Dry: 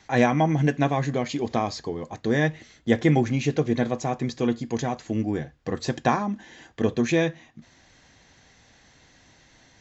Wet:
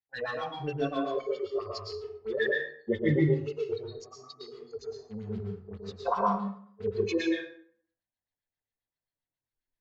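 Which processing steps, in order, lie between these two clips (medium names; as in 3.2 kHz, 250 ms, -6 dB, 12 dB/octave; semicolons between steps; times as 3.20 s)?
spectral noise reduction 30 dB; gate -53 dBFS, range -9 dB; in parallel at -10.5 dB: small samples zeroed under -31 dBFS; on the sum: chorus voices 4, 0.62 Hz, delay 21 ms, depth 1.9 ms; LFO low-pass sine 7.5 Hz 480–4500 Hz; plate-style reverb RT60 0.58 s, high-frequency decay 0.65×, pre-delay 100 ms, DRR -1 dB; trim -5 dB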